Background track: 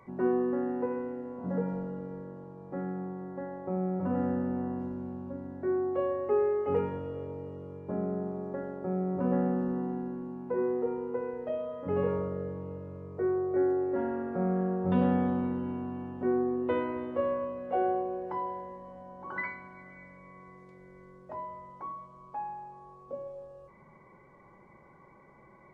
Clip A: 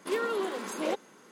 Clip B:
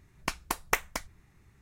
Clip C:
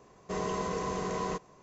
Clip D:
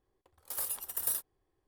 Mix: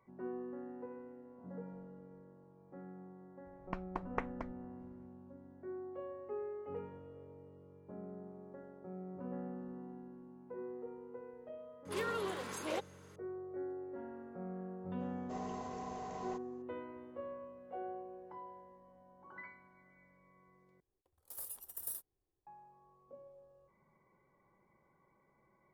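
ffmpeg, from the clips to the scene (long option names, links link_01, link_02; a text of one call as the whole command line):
ffmpeg -i bed.wav -i cue0.wav -i cue1.wav -i cue2.wav -i cue3.wav -filter_complex "[0:a]volume=-15.5dB[link_01];[2:a]lowpass=1100[link_02];[1:a]lowshelf=frequency=460:gain=-6.5[link_03];[3:a]equalizer=frequency=760:width_type=o:width=0.3:gain=15[link_04];[4:a]equalizer=frequency=2200:width=0.39:gain=-8[link_05];[link_01]asplit=2[link_06][link_07];[link_06]atrim=end=20.804[link_08];[link_05]atrim=end=1.67,asetpts=PTS-STARTPTS,volume=-9dB[link_09];[link_07]atrim=start=22.466[link_10];[link_02]atrim=end=1.61,asetpts=PTS-STARTPTS,volume=-6dB,afade=type=in:duration=0.004:curve=hsin,afade=type=out:start_time=1.606:duration=0.004:curve=hsin,adelay=152145S[link_11];[link_03]atrim=end=1.31,asetpts=PTS-STARTPTS,volume=-5dB,afade=type=in:duration=0.004:curve=hsin,afade=type=out:start_time=1.306:duration=0.004:curve=hsin,adelay=11850[link_12];[link_04]atrim=end=1.62,asetpts=PTS-STARTPTS,volume=-15dB,afade=type=in:duration=0.004:curve=hsin,afade=type=out:start_time=1.616:duration=0.004:curve=hsin,adelay=15000[link_13];[link_08][link_09]acrossfade=duration=0.004:curve1=hsin:curve2=hsin[link_14];[link_14][link_10]acrossfade=duration=0.004:curve1=hsin:curve2=hsin[link_15];[link_15][link_11][link_12][link_13]amix=inputs=4:normalize=0" out.wav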